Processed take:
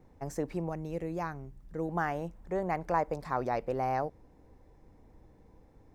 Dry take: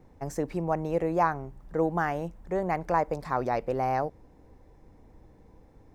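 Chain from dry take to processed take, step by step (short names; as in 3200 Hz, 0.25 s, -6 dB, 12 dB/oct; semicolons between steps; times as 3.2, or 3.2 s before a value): 0.69–1.89 bell 850 Hz -10 dB 2.2 oct; gain -3.5 dB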